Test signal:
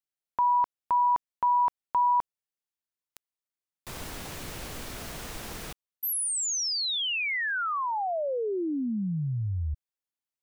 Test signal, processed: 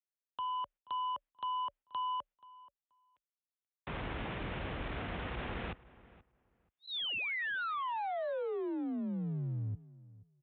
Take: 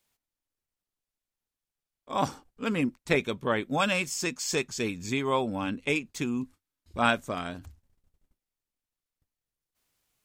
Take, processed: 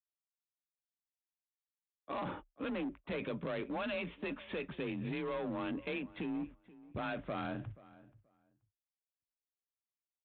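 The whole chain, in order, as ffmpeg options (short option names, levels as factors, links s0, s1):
-filter_complex "[0:a]lowpass=f=3000:w=0.5412,lowpass=f=3000:w=1.3066,dynaudnorm=f=160:g=7:m=1.78,adynamicequalizer=threshold=0.00708:dfrequency=540:dqfactor=7.2:tfrequency=540:tqfactor=7.2:attack=5:release=100:ratio=0.375:range=3.5:mode=boostabove:tftype=bell,agate=range=0.0224:threshold=0.00794:ratio=3:release=90:detection=rms,acompressor=threshold=0.02:ratio=5:attack=4.3:release=32:knee=6:detection=peak,aresample=8000,asoftclip=type=hard:threshold=0.0224,aresample=44100,afreqshift=31,asplit=2[s0][s1];[s1]adelay=480,lowpass=f=2200:p=1,volume=0.106,asplit=2[s2][s3];[s3]adelay=480,lowpass=f=2200:p=1,volume=0.18[s4];[s2][s4]amix=inputs=2:normalize=0[s5];[s0][s5]amix=inputs=2:normalize=0,volume=0.841"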